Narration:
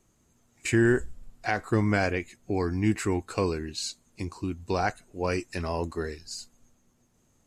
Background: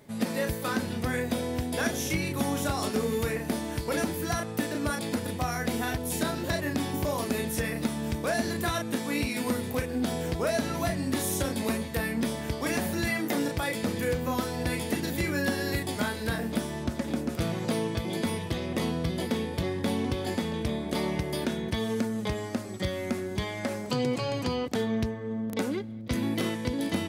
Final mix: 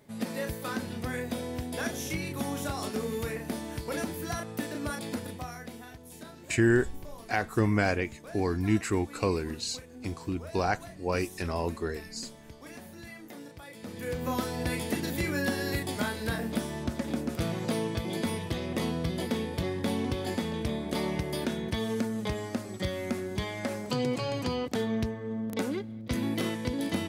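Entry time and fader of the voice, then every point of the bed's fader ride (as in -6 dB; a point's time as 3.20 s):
5.85 s, -1.0 dB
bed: 5.18 s -4.5 dB
5.89 s -17 dB
13.69 s -17 dB
14.27 s -1.5 dB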